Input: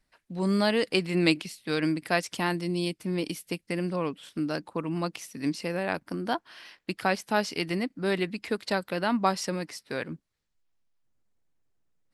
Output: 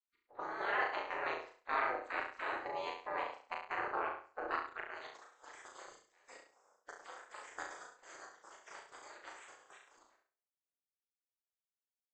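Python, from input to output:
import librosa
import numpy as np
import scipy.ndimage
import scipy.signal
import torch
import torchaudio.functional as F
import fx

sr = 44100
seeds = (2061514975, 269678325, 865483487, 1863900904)

y = fx.freq_compress(x, sr, knee_hz=3700.0, ratio=1.5)
y = fx.level_steps(y, sr, step_db=15)
y = fx.filter_sweep_bandpass(y, sr, from_hz=520.0, to_hz=4100.0, start_s=4.46, end_s=5.38, q=1.3)
y = fx.spec_gate(y, sr, threshold_db=-25, keep='weak')
y = y * np.sin(2.0 * np.pi * 130.0 * np.arange(len(y)) / sr)
y = fx.band_shelf(y, sr, hz=800.0, db=15.5, octaves=2.9)
y = fx.doubler(y, sr, ms=37.0, db=-3.0)
y = fx.echo_feedback(y, sr, ms=68, feedback_pct=30, wet_db=-7.0)
y = fx.band_squash(y, sr, depth_pct=70, at=(9.52, 9.97))
y = F.gain(torch.from_numpy(y), 7.5).numpy()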